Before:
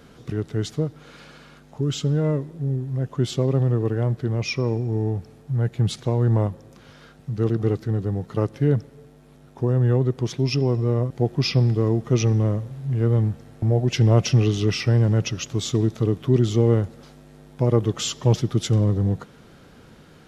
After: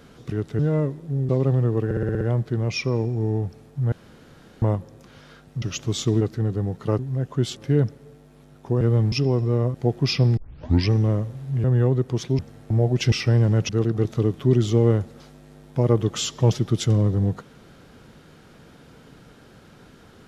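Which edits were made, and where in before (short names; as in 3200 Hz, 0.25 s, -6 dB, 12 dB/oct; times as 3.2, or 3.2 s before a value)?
0.59–2.1 cut
2.8–3.37 move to 8.48
3.93 stutter 0.06 s, 7 plays
5.64–6.34 room tone
7.34–7.7 swap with 15.29–15.88
9.73–10.48 swap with 13–13.31
11.73 tape start 0.55 s
14.04–14.72 cut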